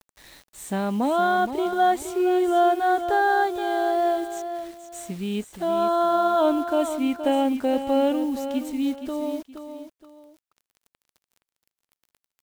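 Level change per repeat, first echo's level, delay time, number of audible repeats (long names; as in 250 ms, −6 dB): −10.5 dB, −9.5 dB, 471 ms, 2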